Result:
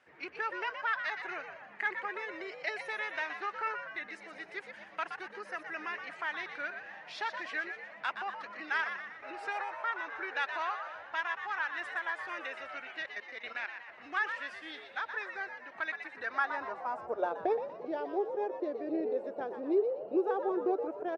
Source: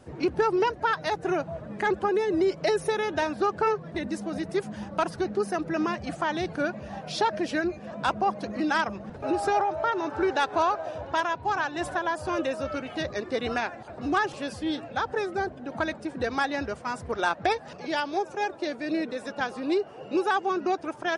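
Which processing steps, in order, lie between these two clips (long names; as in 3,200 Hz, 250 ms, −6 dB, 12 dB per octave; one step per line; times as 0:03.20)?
0:13.00–0:13.88: output level in coarse steps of 15 dB
echo with shifted repeats 121 ms, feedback 46%, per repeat +110 Hz, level −8.5 dB
band-pass filter sweep 2,000 Hz → 460 Hz, 0:16.07–0:17.38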